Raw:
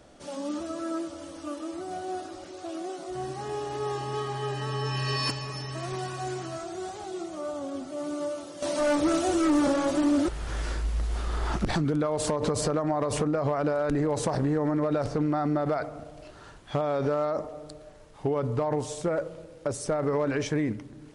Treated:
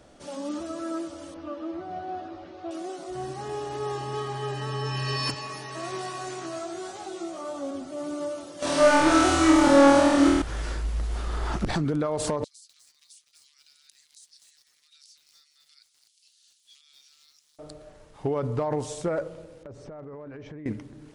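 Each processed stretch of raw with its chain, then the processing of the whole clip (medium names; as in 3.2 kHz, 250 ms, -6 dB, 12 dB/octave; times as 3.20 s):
1.34–2.71 s: distance through air 260 m + doubling 12 ms -6.5 dB
5.34–7.71 s: high-pass 250 Hz 6 dB/octave + doubling 18 ms -2 dB
8.59–10.42 s: peaking EQ 1.8 kHz +4.5 dB 2.8 oct + flutter echo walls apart 4.3 m, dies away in 1.2 s
12.44–17.59 s: inverse Chebyshev high-pass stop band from 660 Hz, stop band 80 dB + compression 8:1, threshold -49 dBFS + bit-crushed delay 251 ms, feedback 35%, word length 10-bit, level -5 dB
19.63–20.66 s: tape spacing loss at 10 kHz 32 dB + compression 10:1, threshold -38 dBFS + hard clipper -34 dBFS
whole clip: none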